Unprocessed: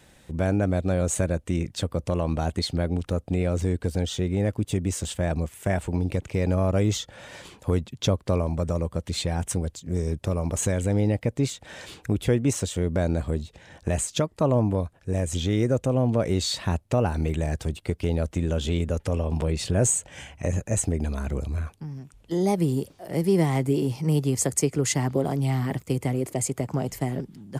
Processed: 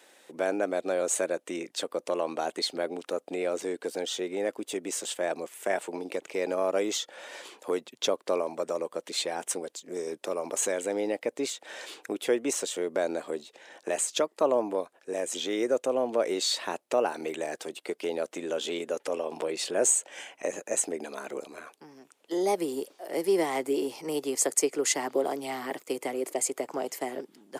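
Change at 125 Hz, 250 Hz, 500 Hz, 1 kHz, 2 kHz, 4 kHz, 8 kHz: -30.0, -8.5, -0.5, 0.0, 0.0, 0.0, 0.0 dB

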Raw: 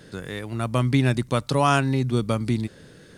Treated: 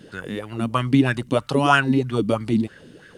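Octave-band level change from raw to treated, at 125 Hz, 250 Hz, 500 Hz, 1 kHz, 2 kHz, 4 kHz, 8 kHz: -2.5, +4.0, +2.5, +2.5, +6.0, +2.5, -3.5 dB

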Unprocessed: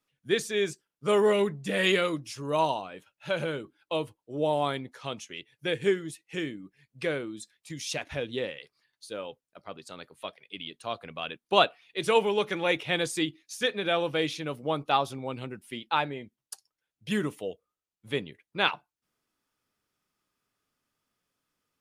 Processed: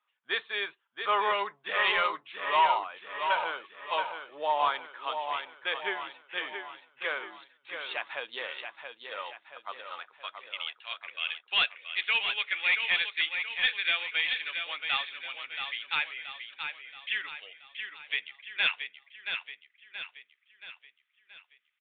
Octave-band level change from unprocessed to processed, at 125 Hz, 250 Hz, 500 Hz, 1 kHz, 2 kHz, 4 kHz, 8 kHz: under -25 dB, -21.0 dB, -11.0 dB, +1.0 dB, +4.5 dB, +2.0 dB, under -35 dB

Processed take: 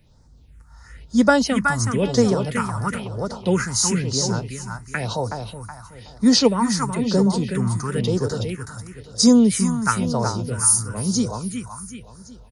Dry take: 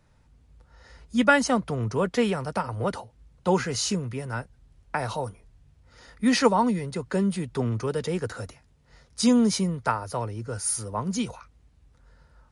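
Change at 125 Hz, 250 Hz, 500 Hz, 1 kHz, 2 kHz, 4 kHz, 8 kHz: +7.0, +6.5, +4.0, +2.5, +2.5, +8.0, +10.5 dB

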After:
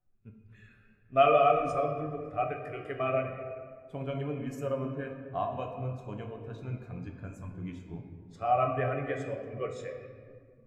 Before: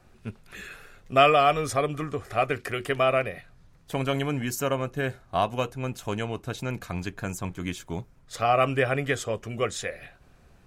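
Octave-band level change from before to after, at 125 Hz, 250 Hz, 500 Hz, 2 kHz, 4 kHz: -5.5, -6.5, -4.0, -10.5, -14.0 dB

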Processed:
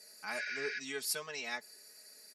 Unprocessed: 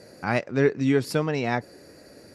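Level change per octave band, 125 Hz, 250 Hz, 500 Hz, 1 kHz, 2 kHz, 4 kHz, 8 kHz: -35.0, -27.0, -19.0, -15.5, -7.0, -2.5, +3.0 dB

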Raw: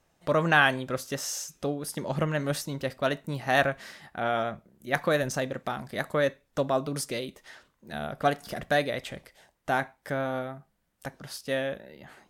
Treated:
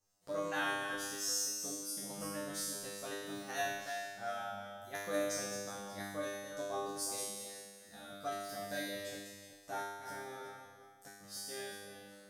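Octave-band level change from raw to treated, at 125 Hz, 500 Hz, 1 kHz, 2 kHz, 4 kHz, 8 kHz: -21.0, -12.5, -12.0, -13.0, -7.0, 0.0 dB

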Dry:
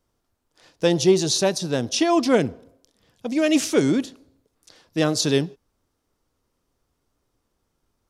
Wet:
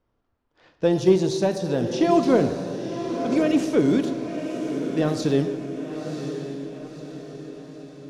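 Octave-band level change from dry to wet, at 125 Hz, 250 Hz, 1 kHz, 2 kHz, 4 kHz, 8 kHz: +0.5, +1.0, 0.0, -5.0, -9.5, -12.0 dB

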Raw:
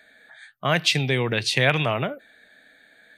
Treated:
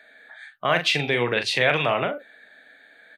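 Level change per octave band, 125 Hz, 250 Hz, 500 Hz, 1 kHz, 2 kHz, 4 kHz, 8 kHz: -7.0, -3.0, +2.0, +2.5, +1.0, -1.0, -5.0 dB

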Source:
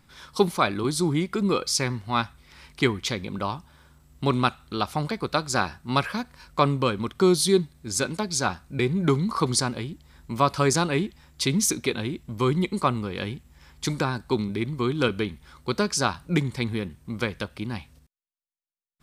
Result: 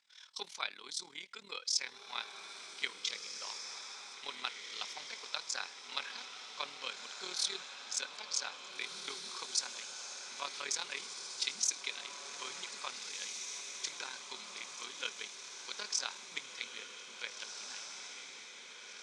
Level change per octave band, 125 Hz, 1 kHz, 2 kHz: under -40 dB, -19.5 dB, -11.0 dB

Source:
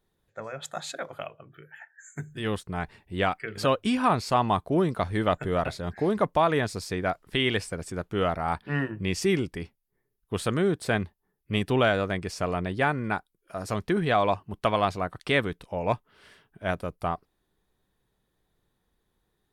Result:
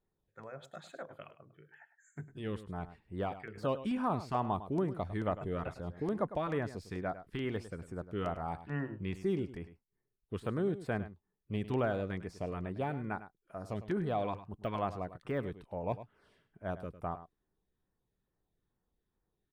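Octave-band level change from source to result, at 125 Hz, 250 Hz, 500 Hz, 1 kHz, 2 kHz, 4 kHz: -8.0, -8.0, -9.5, -11.0, -15.0, -19.0 dB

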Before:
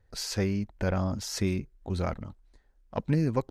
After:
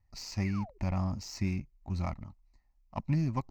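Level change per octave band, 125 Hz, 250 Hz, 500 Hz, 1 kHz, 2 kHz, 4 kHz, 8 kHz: -2.0, -4.0, -12.5, -3.0, -6.0, -8.0, -9.0 dB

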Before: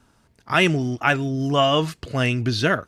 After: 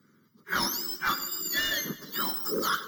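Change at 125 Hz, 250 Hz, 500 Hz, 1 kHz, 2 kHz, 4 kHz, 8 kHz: -24.0, -15.5, -15.5, -8.5, -7.5, -5.0, +5.0 dB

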